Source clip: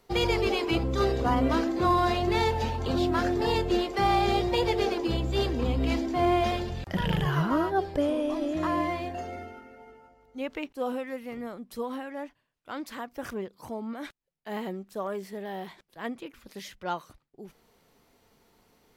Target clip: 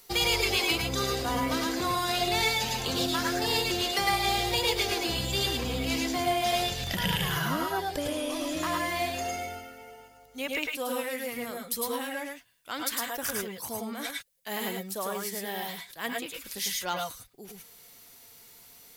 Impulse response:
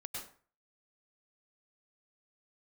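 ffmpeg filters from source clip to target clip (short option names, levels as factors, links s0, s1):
-filter_complex "[0:a]acompressor=threshold=0.0447:ratio=6,crystalizer=i=9:c=0[s0];[1:a]atrim=start_sample=2205,afade=t=out:st=0.16:d=0.01,atrim=end_sample=7497,asetrate=42777,aresample=44100[s1];[s0][s1]afir=irnorm=-1:irlink=0,volume=1.26"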